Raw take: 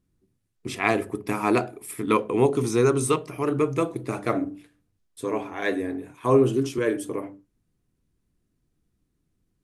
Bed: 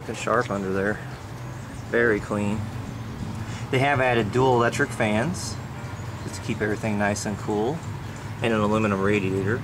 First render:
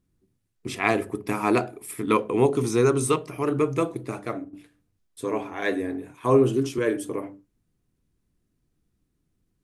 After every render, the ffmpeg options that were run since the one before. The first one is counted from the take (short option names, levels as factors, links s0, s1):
-filter_complex "[0:a]asplit=2[s0][s1];[s0]atrim=end=4.53,asetpts=PTS-STARTPTS,afade=t=out:st=3.87:d=0.66:silence=0.237137[s2];[s1]atrim=start=4.53,asetpts=PTS-STARTPTS,afade=t=in:d=0.004:c=hsin:silence=0.237137[s3];[s2][s3]concat=n=2:v=0:a=1"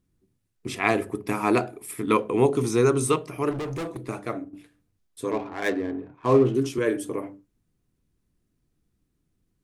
-filter_complex "[0:a]asettb=1/sr,asplit=3[s0][s1][s2];[s0]atrim=end=3.514[s3];[s1]atrim=start=3.51:end=4.09,asetpts=PTS-STARTPTS,afade=t=in:d=0.004:c=qsin,afade=t=out:st=0.576:d=0.004:c=qsin,asoftclip=type=hard:threshold=0.0376[s4];[s2]atrim=start=4.086[s5];[s3][s4]acrossfade=d=0.004:c1=hsin:c2=qsin[s6];[s6][s5]acrossfade=d=0.004:c1=qsin:c2=hsin,asettb=1/sr,asplit=3[s7][s8][s9];[s7]atrim=end=5.314[s10];[s8]atrim=start=5.31:end=6.55,asetpts=PTS-STARTPTS,afade=t=in:d=0.004:c=qsin,afade=t=out:st=1.236:d=0.004:c=qsin,adynamicsmooth=sensitivity=5.5:basefreq=960[s11];[s9]atrim=start=6.546[s12];[s10][s11]acrossfade=d=0.004:c1=hsin:c2=qsin[s13];[s13][s12]acrossfade=d=0.004:c1=qsin:c2=hsin"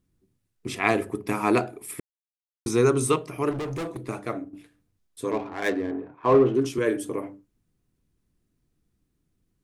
-filter_complex "[0:a]asettb=1/sr,asplit=3[s0][s1][s2];[s0]atrim=end=5.914[s3];[s1]atrim=start=5.91:end=6.65,asetpts=PTS-STARTPTS,afade=t=in:d=0.004:c=qsin,afade=t=out:st=0.736:d=0.004:c=qsin,asplit=2[s4][s5];[s5]highpass=f=720:p=1,volume=4.47,asoftclip=type=tanh:threshold=0.447[s6];[s4][s6]amix=inputs=2:normalize=0,lowpass=f=1100:p=1,volume=0.501[s7];[s2]atrim=start=6.646[s8];[s3][s7]acrossfade=d=0.004:c1=hsin:c2=qsin[s9];[s9][s8]acrossfade=d=0.004:c1=qsin:c2=hsin,asplit=3[s10][s11][s12];[s10]atrim=end=2,asetpts=PTS-STARTPTS,afade=t=out:st=1.996:d=0.004:c=hsin[s13];[s11]atrim=start=2:end=2.66,asetpts=PTS-STARTPTS,volume=0[s14];[s12]atrim=start=2.66,asetpts=PTS-STARTPTS,afade=t=in:d=0.004:c=hsin[s15];[s13][s14][s15]concat=n=3:v=0:a=1"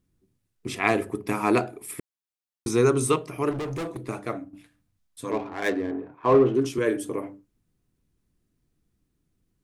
-filter_complex "[0:a]asettb=1/sr,asplit=3[s0][s1][s2];[s0]atrim=end=0.874[s3];[s1]atrim=start=0.87:end=1.51,asetpts=PTS-STARTPTS,afade=t=in:d=0.004:c=qsin,afade=t=out:st=0.636:d=0.004:c=qsin,volume=3.16,asoftclip=hard,volume=0.316[s4];[s2]atrim=start=1.506[s5];[s3][s4]acrossfade=d=0.004:c1=hsin:c2=qsin[s6];[s6][s5]acrossfade=d=0.004:c1=qsin:c2=hsin,asettb=1/sr,asplit=3[s7][s8][s9];[s7]atrim=end=4.364[s10];[s8]atrim=start=4.36:end=5.3,asetpts=PTS-STARTPTS,afade=t=in:d=0.004:c=qsin,afade=t=out:st=0.936:d=0.004:c=qsin,equalizer=f=400:t=o:w=0.48:g=-13.5[s11];[s9]atrim=start=5.296[s12];[s10][s11]acrossfade=d=0.004:c1=hsin:c2=qsin[s13];[s13][s12]acrossfade=d=0.004:c1=qsin:c2=hsin"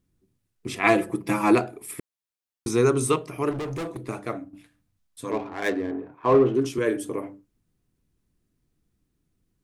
-filter_complex "[0:a]asettb=1/sr,asplit=3[s0][s1][s2];[s0]atrim=end=0.834[s3];[s1]atrim=start=0.83:end=1.55,asetpts=PTS-STARTPTS,afade=t=in:d=0.004:c=qsin,afade=t=out:st=0.716:d=0.004:c=qsin,aecho=1:1:6:0.96,atrim=end_sample=31752[s4];[s2]atrim=start=1.546[s5];[s3][s4]acrossfade=d=0.004:c1=hsin:c2=qsin[s6];[s6][s5]acrossfade=d=0.004:c1=qsin:c2=hsin"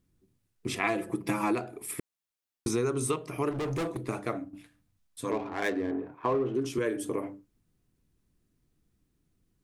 -af "acompressor=threshold=0.0501:ratio=5"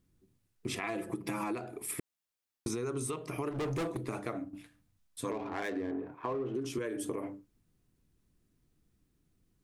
-af "alimiter=limit=0.0891:level=0:latency=1:release=76,acompressor=threshold=0.0251:ratio=6"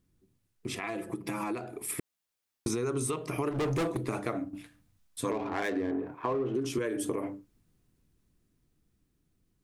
-af "dynaudnorm=f=220:g=17:m=1.68"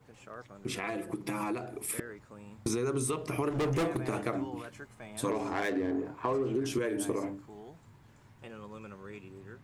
-filter_complex "[1:a]volume=0.0596[s0];[0:a][s0]amix=inputs=2:normalize=0"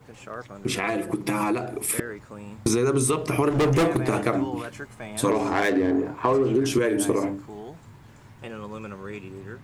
-af "volume=2.99"